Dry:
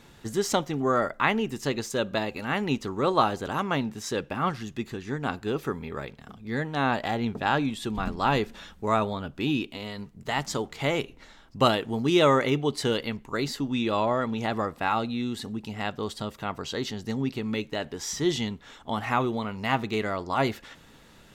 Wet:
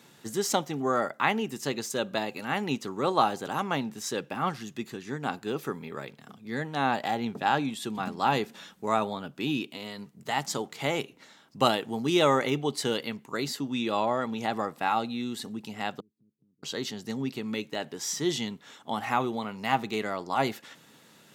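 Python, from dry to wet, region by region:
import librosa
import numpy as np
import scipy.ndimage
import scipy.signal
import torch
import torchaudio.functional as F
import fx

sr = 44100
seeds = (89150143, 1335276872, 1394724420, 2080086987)

y = fx.chain(x, sr, fx.cheby2_lowpass(hz=660.0, order=4, stop_db=40),
    fx.gate_flip(shuts_db=-41.0, range_db=-27), at=(16.0, 16.63))
y = fx.dynamic_eq(y, sr, hz=800.0, q=6.8, threshold_db=-44.0, ratio=4.0, max_db=6)
y = scipy.signal.sosfilt(scipy.signal.butter(4, 130.0, 'highpass', fs=sr, output='sos'), y)
y = fx.high_shelf(y, sr, hz=5600.0, db=7.5)
y = y * 10.0 ** (-3.0 / 20.0)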